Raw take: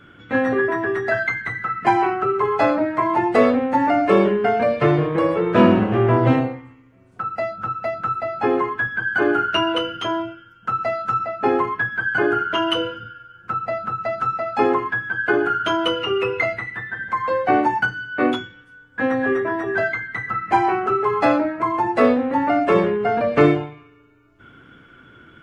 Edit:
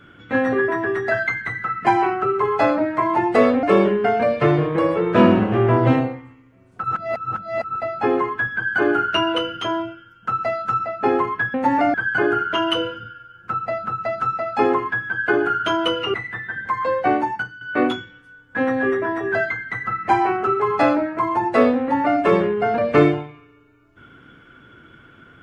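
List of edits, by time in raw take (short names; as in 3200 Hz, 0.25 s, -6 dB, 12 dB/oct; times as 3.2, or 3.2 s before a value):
3.63–4.03 move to 11.94
7.24–8.16 reverse
16.14–16.57 cut
17.4–18.04 fade out, to -12 dB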